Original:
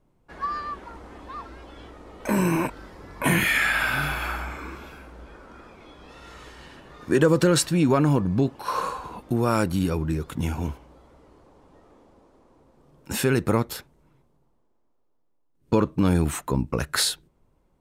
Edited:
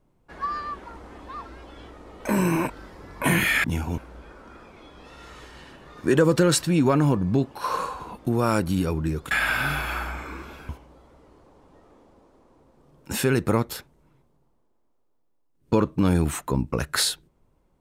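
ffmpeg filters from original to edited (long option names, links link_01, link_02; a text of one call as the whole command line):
ffmpeg -i in.wav -filter_complex "[0:a]asplit=5[link_01][link_02][link_03][link_04][link_05];[link_01]atrim=end=3.642[link_06];[link_02]atrim=start=10.348:end=10.692[link_07];[link_03]atrim=start=5.018:end=10.352[link_08];[link_04]atrim=start=3.638:end=5.022[link_09];[link_05]atrim=start=10.688[link_10];[link_06][link_07]acrossfade=duration=0.004:curve1=hsin:curve2=hsin[link_11];[link_11][link_08]acrossfade=duration=0.004:curve1=hsin:curve2=hsin[link_12];[link_12][link_09]acrossfade=duration=0.004:curve1=hsin:curve2=hsin[link_13];[link_13][link_10]acrossfade=duration=0.004:curve1=hsin:curve2=hsin" out.wav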